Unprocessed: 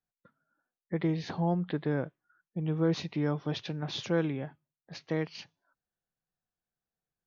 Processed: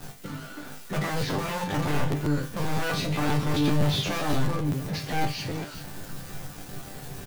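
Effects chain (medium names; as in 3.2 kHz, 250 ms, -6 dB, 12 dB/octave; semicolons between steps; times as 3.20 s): jump at every zero crossing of -41.5 dBFS; bass shelf 480 Hz +10.5 dB; on a send: delay 375 ms -12 dB; on the sum: waveshaping leveller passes 5; in parallel at -3 dB: integer overflow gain 11 dB; on the sum: chord resonator G2 sus4, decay 0.28 s; crackling interface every 0.13 s, samples 512, repeat, from 0.94 s; trim -4 dB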